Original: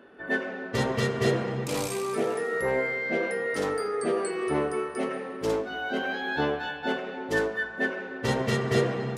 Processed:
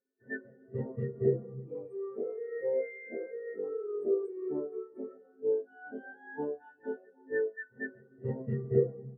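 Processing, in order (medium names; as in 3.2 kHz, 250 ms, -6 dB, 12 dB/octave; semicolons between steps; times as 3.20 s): peaking EQ 5.5 kHz -11 dB 1.9 oct; on a send: reverse echo 530 ms -11.5 dB; on the sum: spectral contrast expander 2.5:1; trim -1.5 dB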